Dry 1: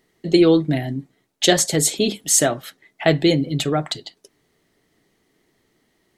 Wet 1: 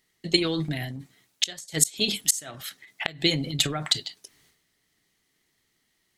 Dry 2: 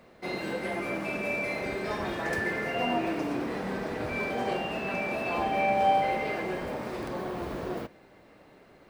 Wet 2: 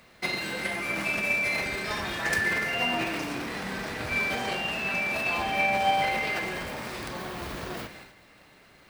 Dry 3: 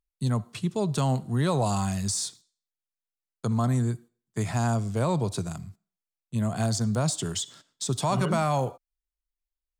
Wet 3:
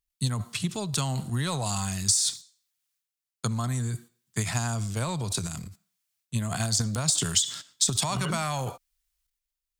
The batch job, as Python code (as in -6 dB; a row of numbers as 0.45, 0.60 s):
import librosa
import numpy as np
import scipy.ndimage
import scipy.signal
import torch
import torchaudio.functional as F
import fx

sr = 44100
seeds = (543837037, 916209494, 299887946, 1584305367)

y = fx.tone_stack(x, sr, knobs='5-5-5')
y = fx.gate_flip(y, sr, shuts_db=-15.0, range_db=-27)
y = fx.transient(y, sr, attack_db=7, sustain_db=11)
y = y * 10.0 ** (-30 / 20.0) / np.sqrt(np.mean(np.square(y)))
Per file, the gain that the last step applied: +4.5, +14.5, +10.5 dB